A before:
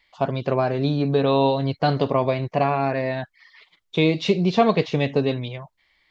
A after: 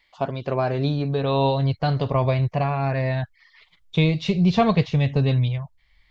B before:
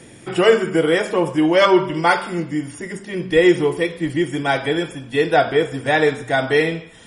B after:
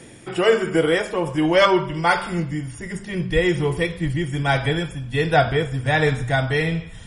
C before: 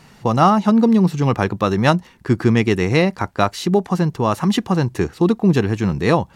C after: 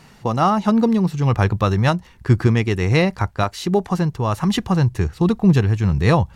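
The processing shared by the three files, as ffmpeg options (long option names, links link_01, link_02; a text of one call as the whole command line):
ffmpeg -i in.wav -af "asubboost=boost=11.5:cutoff=100,tremolo=f=1.3:d=0.33" out.wav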